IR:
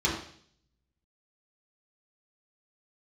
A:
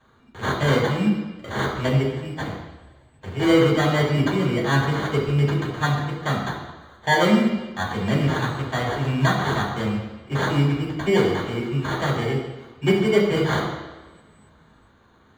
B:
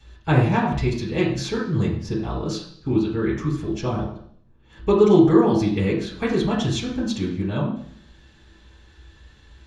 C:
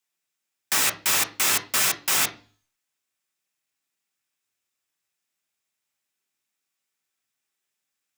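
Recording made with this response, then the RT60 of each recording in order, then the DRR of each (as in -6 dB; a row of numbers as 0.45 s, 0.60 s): B; 1.3 s, 0.55 s, 0.40 s; -5.5 dB, -7.5 dB, 6.0 dB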